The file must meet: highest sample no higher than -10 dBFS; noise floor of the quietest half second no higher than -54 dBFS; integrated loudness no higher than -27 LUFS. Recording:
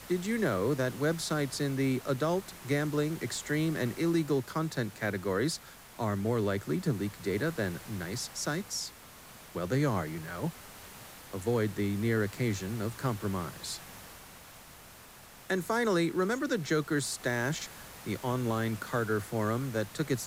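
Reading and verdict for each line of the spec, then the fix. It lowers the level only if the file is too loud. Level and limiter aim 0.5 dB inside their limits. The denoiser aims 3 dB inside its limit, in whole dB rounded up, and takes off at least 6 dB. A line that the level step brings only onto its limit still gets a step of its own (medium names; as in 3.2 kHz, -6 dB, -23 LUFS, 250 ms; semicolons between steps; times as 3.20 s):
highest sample -17.5 dBFS: pass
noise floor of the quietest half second -52 dBFS: fail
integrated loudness -32.0 LUFS: pass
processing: noise reduction 6 dB, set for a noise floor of -52 dBFS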